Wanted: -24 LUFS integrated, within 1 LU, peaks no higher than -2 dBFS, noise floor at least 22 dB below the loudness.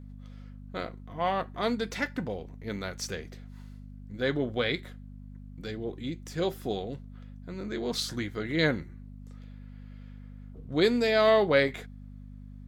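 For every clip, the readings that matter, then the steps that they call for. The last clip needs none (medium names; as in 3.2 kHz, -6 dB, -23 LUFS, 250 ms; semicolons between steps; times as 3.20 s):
hum 50 Hz; highest harmonic 250 Hz; hum level -42 dBFS; loudness -29.5 LUFS; peak level -10.0 dBFS; loudness target -24.0 LUFS
-> de-hum 50 Hz, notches 5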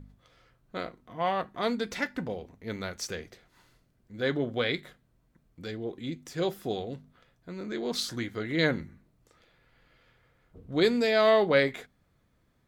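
hum not found; loudness -29.5 LUFS; peak level -10.0 dBFS; loudness target -24.0 LUFS
-> trim +5.5 dB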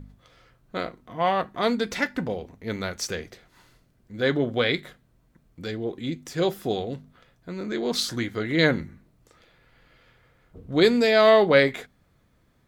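loudness -24.0 LUFS; peak level -4.5 dBFS; noise floor -64 dBFS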